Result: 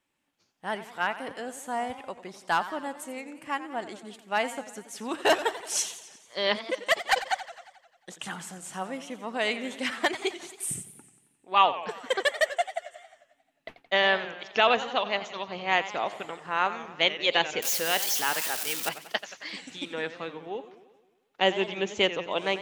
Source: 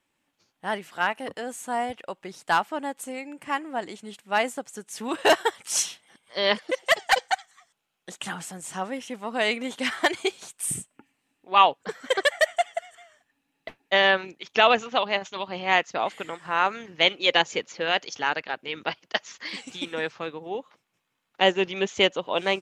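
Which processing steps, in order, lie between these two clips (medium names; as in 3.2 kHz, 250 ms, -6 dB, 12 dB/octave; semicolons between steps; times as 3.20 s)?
17.62–18.89 s: zero-crossing glitches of -17 dBFS; modulated delay 89 ms, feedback 62%, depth 154 cents, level -14 dB; trim -3.5 dB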